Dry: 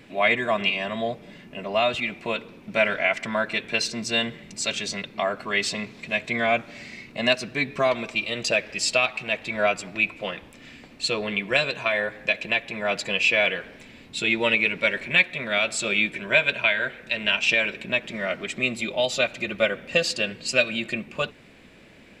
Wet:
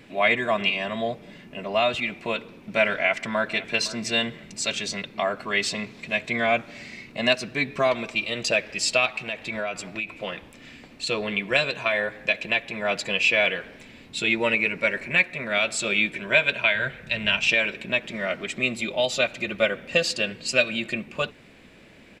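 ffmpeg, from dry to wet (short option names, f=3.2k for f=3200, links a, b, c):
-filter_complex "[0:a]asplit=2[a][b];[b]afade=t=in:st=2.9:d=0.01,afade=t=out:st=3.71:d=0.01,aecho=0:1:510|1020:0.141254|0.0211881[c];[a][c]amix=inputs=2:normalize=0,asettb=1/sr,asplit=3[d][e][f];[d]atrim=end=9.264[g];[e]atrim=start=9.26:end=11.07,asetpts=PTS-STARTPTS,afade=t=in:d=0.004:c=qsin,afade=t=out:st=1.806:d=0.004:c=qsin,acompressor=threshold=-25dB:ratio=6:attack=3.2:release=140:knee=1:detection=peak[h];[f]atrim=start=11.066[i];[g][h]acrossfade=d=0.004:c1=hsin:c2=qsin[j];[j][i]acrossfade=d=0.004:c1=qsin:c2=hsin,asettb=1/sr,asplit=3[k][l][m];[k]atrim=end=14.354[n];[l]atrim=start=14.35:end=15.55,asetpts=PTS-STARTPTS,afade=t=in:d=0.004:c=qsin,afade=t=out:st=1.196:d=0.004:c=qsin,equalizer=f=3.4k:w=3.9:g=-11[o];[m]atrim=start=15.546[p];[n][o]acrossfade=d=0.004:c1=hsin:c2=qsin[q];[q][p]acrossfade=d=0.004:c1=qsin:c2=hsin,asettb=1/sr,asplit=3[r][s][t];[r]atrim=end=16.754[u];[s]atrim=start=16.75:end=17.48,asetpts=PTS-STARTPTS,afade=t=in:d=0.004:c=qsin,afade=t=out:st=0.726:d=0.004:c=qsin,lowshelf=f=200:t=q:w=1.5:g=8[v];[t]atrim=start=17.476[w];[u][v]acrossfade=d=0.004:c1=hsin:c2=qsin[x];[x][w]acrossfade=d=0.004:c1=qsin:c2=hsin"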